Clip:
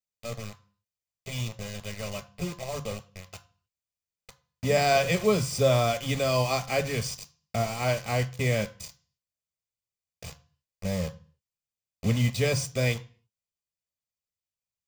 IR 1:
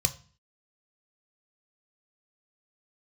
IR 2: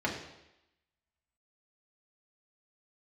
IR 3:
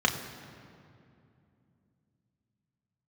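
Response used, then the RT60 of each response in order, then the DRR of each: 1; 0.40, 0.90, 2.6 seconds; 7.5, −3.0, 1.5 decibels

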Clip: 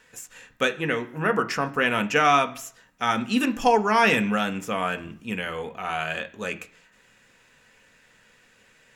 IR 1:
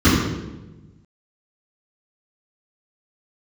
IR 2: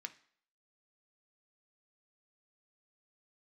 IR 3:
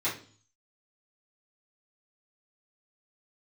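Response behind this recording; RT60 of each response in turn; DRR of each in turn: 2; 1.1 s, non-exponential decay, 0.45 s; −14.0, 7.0, −11.0 decibels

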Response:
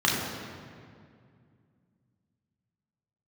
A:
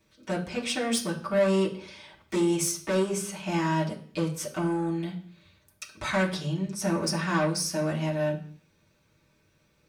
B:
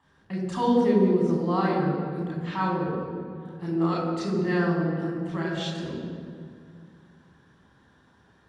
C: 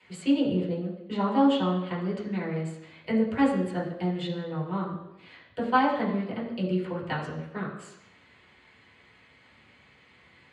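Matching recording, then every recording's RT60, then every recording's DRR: B; 0.50, 2.2, 0.85 seconds; −6.5, −4.0, −6.0 decibels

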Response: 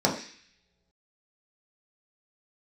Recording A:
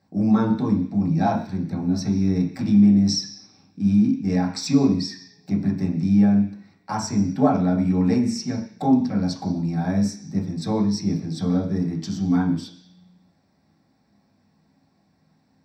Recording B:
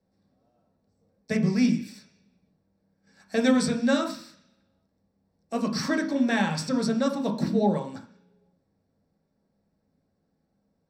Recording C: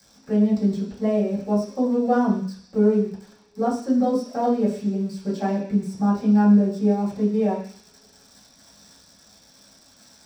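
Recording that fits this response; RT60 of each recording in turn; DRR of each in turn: A; non-exponential decay, non-exponential decay, non-exponential decay; −3.0, 2.0, −12.5 decibels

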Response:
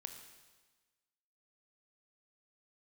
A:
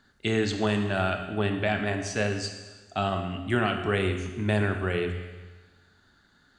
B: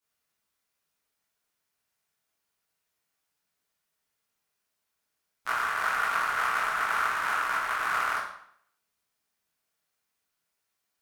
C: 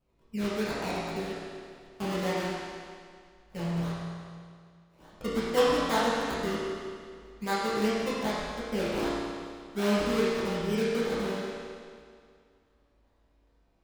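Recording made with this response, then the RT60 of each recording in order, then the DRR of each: A; 1.3, 0.65, 2.1 seconds; 5.5, −10.0, −10.0 decibels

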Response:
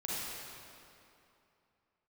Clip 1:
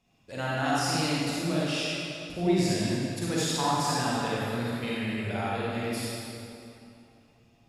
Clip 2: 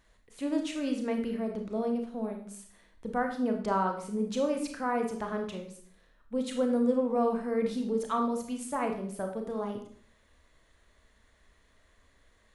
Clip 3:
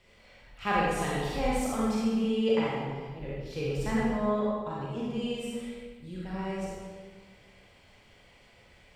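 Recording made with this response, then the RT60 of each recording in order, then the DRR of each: 1; 2.8, 0.55, 1.5 seconds; −7.5, 3.0, −6.5 decibels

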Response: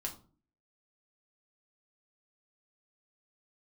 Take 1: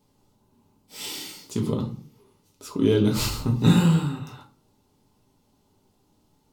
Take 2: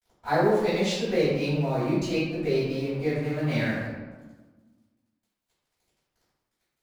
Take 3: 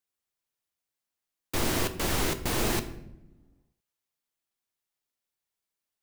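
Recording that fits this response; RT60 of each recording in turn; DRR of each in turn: 1; 0.40 s, 1.3 s, non-exponential decay; 0.5, −16.0, 8.0 decibels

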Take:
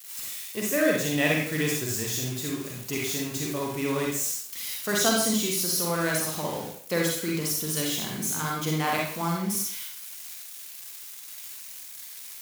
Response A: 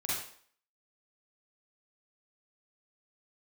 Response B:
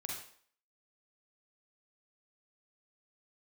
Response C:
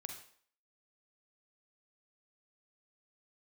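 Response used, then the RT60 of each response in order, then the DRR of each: B; 0.55, 0.55, 0.55 seconds; −8.0, −2.5, 3.5 decibels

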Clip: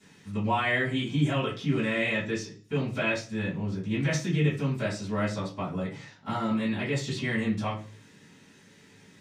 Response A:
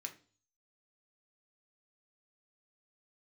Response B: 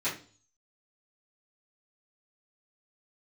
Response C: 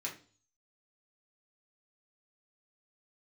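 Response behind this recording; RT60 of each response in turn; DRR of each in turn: B; 0.40, 0.40, 0.40 seconds; 3.5, −13.0, −3.5 decibels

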